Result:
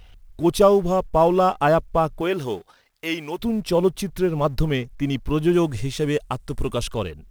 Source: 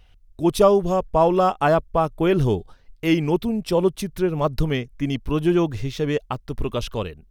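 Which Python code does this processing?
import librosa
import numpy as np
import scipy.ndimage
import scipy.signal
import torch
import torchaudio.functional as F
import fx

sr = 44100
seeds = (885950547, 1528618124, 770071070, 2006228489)

y = fx.law_mismatch(x, sr, coded='mu')
y = fx.highpass(y, sr, hz=fx.line((2.2, 500.0), (3.38, 1100.0)), slope=6, at=(2.2, 3.38), fade=0.02)
y = fx.peak_eq(y, sr, hz=8700.0, db=10.5, octaves=0.63, at=(5.53, 6.94))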